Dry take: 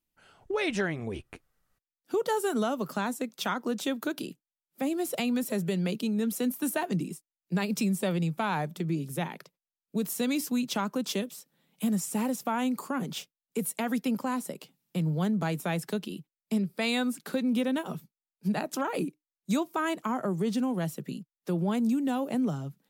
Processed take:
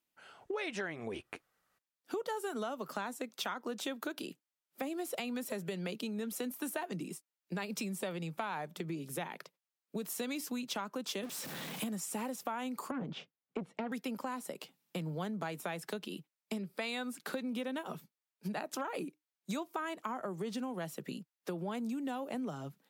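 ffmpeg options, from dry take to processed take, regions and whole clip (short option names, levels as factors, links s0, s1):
-filter_complex "[0:a]asettb=1/sr,asplit=3[s0][s1][s2];[s0]atrim=end=11.234[s3];[s1]atrim=start=11.23:end=11.84,asetpts=PTS-STARTPTS,afade=t=in:d=0.004:c=qsin,afade=t=out:st=0.606:d=0.004:c=qsin,aeval=exprs='val(0)+0.5*0.0126*sgn(val(0))':c=same,lowshelf=f=200:g=9.5[s4];[s2]atrim=start=11.836[s5];[s3][s4]acrossfade=d=0.004:c1=hsin:c2=qsin[s6];[s6][s5]acrossfade=d=0.004:c1=qsin:c2=hsin,asettb=1/sr,asplit=3[s7][s8][s9];[s7]atrim=end=12.914[s10];[s8]atrim=start=12.91:end=13.92,asetpts=PTS-STARTPTS,afade=t=in:d=0.004:c=qsin,afade=t=out:st=1.006:d=0.004:c=qsin,lowpass=4400,aemphasis=mode=reproduction:type=riaa,aeval=exprs='(tanh(11.2*val(0)+0.45)-tanh(0.45))/11.2':c=same[s11];[s9]atrim=start=13.916[s12];[s10][s11]acrossfade=d=0.004:c1=hsin:c2=qsin[s13];[s13][s12]acrossfade=d=0.004:c1=qsin:c2=hsin,highpass=f=530:p=1,highshelf=f=4100:g=-6,acompressor=threshold=0.00891:ratio=4,volume=1.68"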